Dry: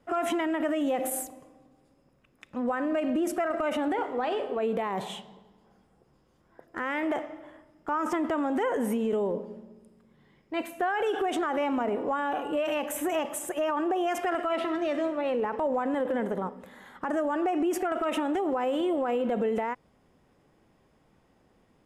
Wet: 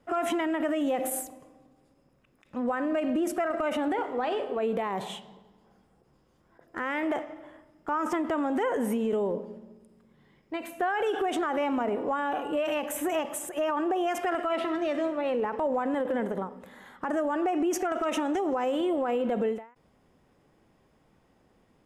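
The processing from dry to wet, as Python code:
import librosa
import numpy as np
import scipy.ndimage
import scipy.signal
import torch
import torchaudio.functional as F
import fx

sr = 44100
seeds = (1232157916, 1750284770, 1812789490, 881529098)

y = fx.peak_eq(x, sr, hz=6100.0, db=10.5, octaves=0.39, at=(17.72, 18.72))
y = fx.end_taper(y, sr, db_per_s=150.0)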